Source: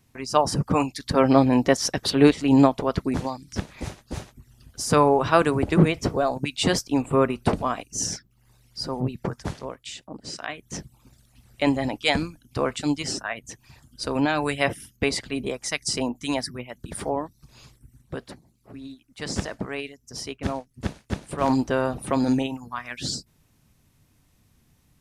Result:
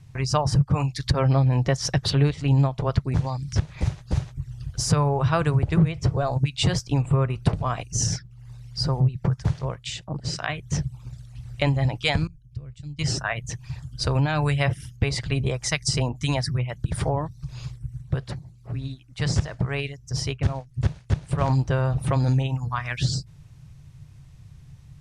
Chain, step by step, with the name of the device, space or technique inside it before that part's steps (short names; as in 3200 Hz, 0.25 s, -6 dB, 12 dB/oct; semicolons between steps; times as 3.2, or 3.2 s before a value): jukebox (LPF 7800 Hz 12 dB/oct; resonant low shelf 180 Hz +9 dB, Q 3; compressor 3:1, threshold -26 dBFS, peak gain reduction 16.5 dB); 12.27–12.99 passive tone stack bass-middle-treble 10-0-1; gain +5 dB